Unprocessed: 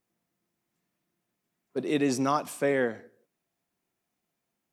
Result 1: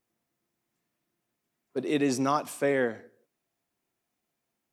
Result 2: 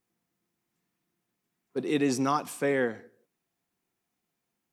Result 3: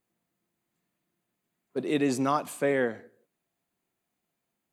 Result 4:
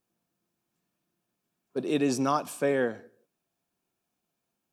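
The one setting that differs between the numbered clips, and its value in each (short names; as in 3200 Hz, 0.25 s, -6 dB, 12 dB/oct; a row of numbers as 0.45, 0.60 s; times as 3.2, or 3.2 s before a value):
notch, frequency: 180, 610, 5500, 2000 Hz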